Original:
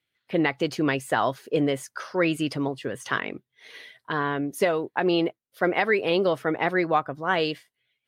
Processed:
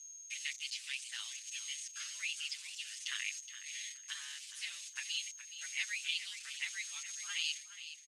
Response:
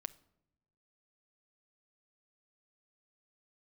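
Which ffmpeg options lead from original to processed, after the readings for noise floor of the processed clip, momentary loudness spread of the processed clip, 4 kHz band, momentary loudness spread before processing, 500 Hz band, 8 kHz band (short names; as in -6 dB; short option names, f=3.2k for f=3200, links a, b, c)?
-53 dBFS, 7 LU, -3.5 dB, 9 LU, under -40 dB, +5.5 dB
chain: -filter_complex "[0:a]aemphasis=mode=reproduction:type=riaa,agate=range=-33dB:threshold=-47dB:ratio=3:detection=peak,acrossover=split=3900[a][b];[a]acompressor=threshold=-26dB:ratio=16[c];[c][b]amix=inputs=2:normalize=0,aeval=exprs='val(0)+0.00112*(sin(2*PI*60*n/s)+sin(2*PI*2*60*n/s)/2+sin(2*PI*3*60*n/s)/3+sin(2*PI*4*60*n/s)/4+sin(2*PI*5*60*n/s)/5)':c=same,aeval=exprs='val(0)*sin(2*PI*100*n/s)':c=same,aeval=exprs='val(0)+0.00178*sin(2*PI*6500*n/s)':c=same,acrusher=bits=9:dc=4:mix=0:aa=0.000001,asuperpass=centerf=4900:order=8:qfactor=0.71,aecho=1:1:419|838|1257:0.251|0.0628|0.0157,asplit=2[d][e];[e]adelay=7.6,afreqshift=0.55[f];[d][f]amix=inputs=2:normalize=1,volume=12.5dB"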